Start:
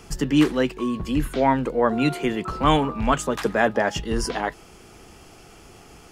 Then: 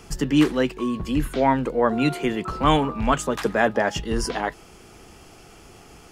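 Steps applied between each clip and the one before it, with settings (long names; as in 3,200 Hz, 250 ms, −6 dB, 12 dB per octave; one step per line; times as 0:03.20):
no processing that can be heard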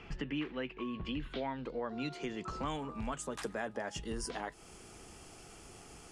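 low-pass filter sweep 2,600 Hz → 9,200 Hz, 0:00.82–0:03.06
downward compressor 4 to 1, threshold −30 dBFS, peak gain reduction 15 dB
level −7 dB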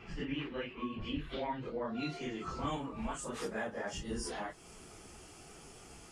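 random phases in long frames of 100 ms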